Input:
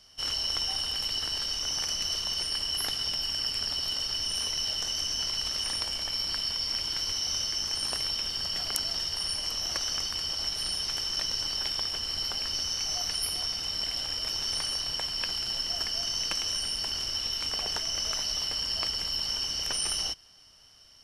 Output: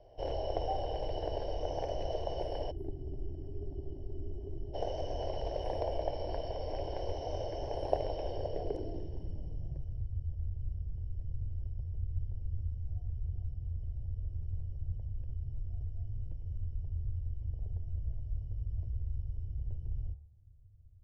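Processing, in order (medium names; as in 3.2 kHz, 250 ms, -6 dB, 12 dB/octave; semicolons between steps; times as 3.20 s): low-pass sweep 640 Hz -> 100 Hz, 8.29–10.06 s; static phaser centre 520 Hz, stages 4; de-hum 71.51 Hz, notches 31; time-frequency box 2.71–4.74 s, 410–11000 Hz -26 dB; trim +10 dB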